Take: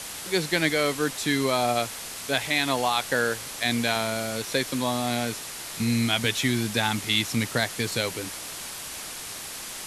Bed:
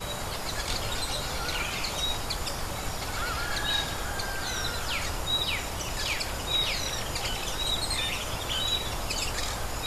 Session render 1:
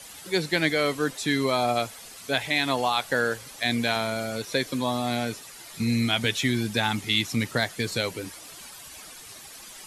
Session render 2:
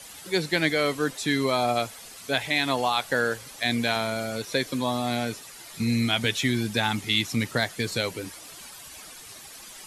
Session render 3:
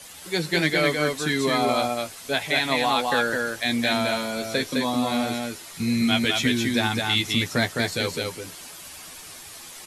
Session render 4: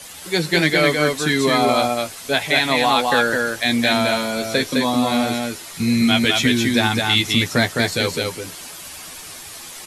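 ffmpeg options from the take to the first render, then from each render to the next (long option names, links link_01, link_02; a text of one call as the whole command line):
ffmpeg -i in.wav -af "afftdn=noise_reduction=11:noise_floor=-37" out.wav
ffmpeg -i in.wav -af anull out.wav
ffmpeg -i in.wav -filter_complex "[0:a]asplit=2[link_01][link_02];[link_02]adelay=12,volume=-7dB[link_03];[link_01][link_03]amix=inputs=2:normalize=0,aecho=1:1:210:0.708" out.wav
ffmpeg -i in.wav -af "volume=5.5dB,alimiter=limit=-3dB:level=0:latency=1" out.wav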